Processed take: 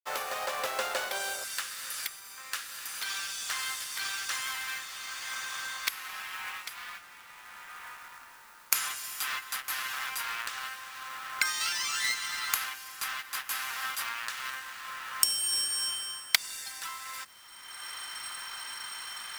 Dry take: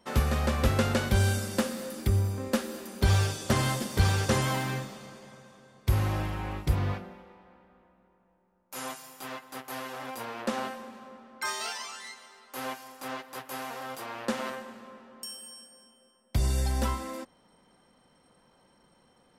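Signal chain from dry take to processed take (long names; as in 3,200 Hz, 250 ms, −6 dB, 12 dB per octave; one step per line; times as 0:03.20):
camcorder AGC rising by 30 dB per second
high-pass filter 570 Hz 24 dB per octave, from 0:01.44 1,300 Hz
log-companded quantiser 4 bits
level −1 dB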